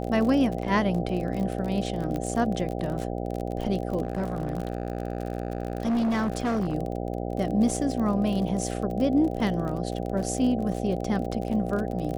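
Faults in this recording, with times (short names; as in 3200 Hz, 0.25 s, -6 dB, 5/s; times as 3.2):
buzz 60 Hz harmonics 13 -31 dBFS
crackle 40/s -31 dBFS
2.16 pop -19 dBFS
4.03–6.75 clipped -22 dBFS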